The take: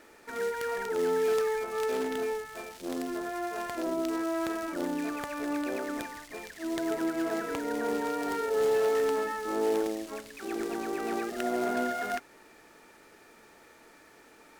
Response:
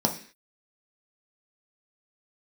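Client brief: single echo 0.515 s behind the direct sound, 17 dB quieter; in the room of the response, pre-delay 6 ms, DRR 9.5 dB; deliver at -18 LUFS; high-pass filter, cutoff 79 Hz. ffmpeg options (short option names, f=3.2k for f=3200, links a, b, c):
-filter_complex "[0:a]highpass=79,aecho=1:1:515:0.141,asplit=2[a][b];[1:a]atrim=start_sample=2205,adelay=6[c];[b][c]afir=irnorm=-1:irlink=0,volume=-20.5dB[d];[a][d]amix=inputs=2:normalize=0,volume=11.5dB"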